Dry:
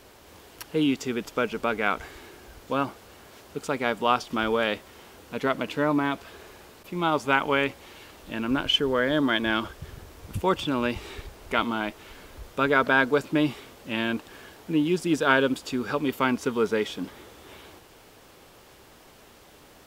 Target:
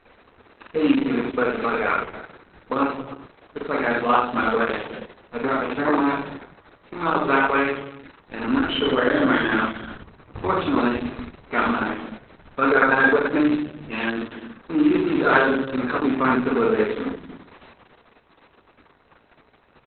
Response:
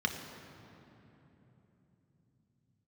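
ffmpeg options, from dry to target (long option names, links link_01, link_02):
-filter_complex "[0:a]acrusher=bits=6:dc=4:mix=0:aa=0.000001,aecho=1:1:46.65|87.46:0.794|0.631,asplit=2[link_01][link_02];[1:a]atrim=start_sample=2205,afade=type=out:start_time=0.42:duration=0.01,atrim=end_sample=18963[link_03];[link_02][link_03]afir=irnorm=-1:irlink=0,volume=-10dB[link_04];[link_01][link_04]amix=inputs=2:normalize=0" -ar 48000 -c:a libopus -b:a 6k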